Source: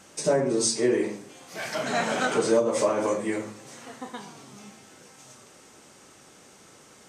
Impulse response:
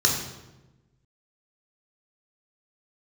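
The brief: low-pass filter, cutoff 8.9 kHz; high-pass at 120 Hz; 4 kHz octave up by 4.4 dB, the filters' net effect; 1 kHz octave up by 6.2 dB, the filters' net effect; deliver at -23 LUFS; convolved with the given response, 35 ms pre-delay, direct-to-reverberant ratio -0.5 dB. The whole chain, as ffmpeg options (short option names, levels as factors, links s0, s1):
-filter_complex "[0:a]highpass=120,lowpass=8900,equalizer=f=1000:t=o:g=8,equalizer=f=4000:t=o:g=5.5,asplit=2[s0][s1];[1:a]atrim=start_sample=2205,adelay=35[s2];[s1][s2]afir=irnorm=-1:irlink=0,volume=0.211[s3];[s0][s3]amix=inputs=2:normalize=0,volume=0.75"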